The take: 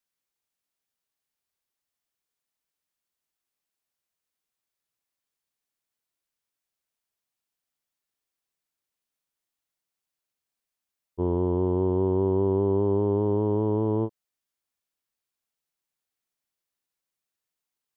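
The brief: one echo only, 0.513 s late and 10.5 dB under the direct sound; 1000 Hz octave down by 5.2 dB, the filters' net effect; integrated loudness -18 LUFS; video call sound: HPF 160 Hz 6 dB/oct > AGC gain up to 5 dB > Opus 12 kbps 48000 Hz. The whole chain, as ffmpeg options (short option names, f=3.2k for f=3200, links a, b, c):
-af "highpass=f=160:p=1,equalizer=f=1k:t=o:g=-6,aecho=1:1:513:0.299,dynaudnorm=m=5dB,volume=7.5dB" -ar 48000 -c:a libopus -b:a 12k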